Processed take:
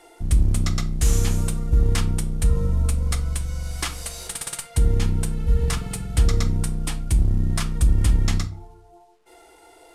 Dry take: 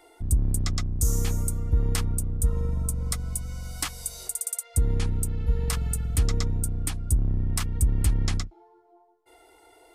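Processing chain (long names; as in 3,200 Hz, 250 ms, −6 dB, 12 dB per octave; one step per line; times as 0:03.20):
variable-slope delta modulation 64 kbit/s
rectangular room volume 370 cubic metres, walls furnished, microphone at 0.78 metres
level +4 dB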